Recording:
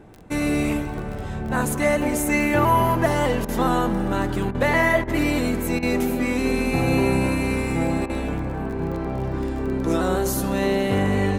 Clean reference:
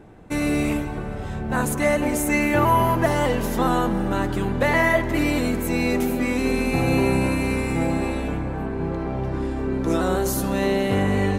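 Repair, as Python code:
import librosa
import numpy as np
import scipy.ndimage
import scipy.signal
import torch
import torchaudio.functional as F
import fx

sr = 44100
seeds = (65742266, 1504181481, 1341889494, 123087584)

y = fx.fix_declick_ar(x, sr, threshold=6.5)
y = fx.fix_interpolate(y, sr, at_s=(3.45, 4.51, 5.04, 5.79, 8.06), length_ms=35.0)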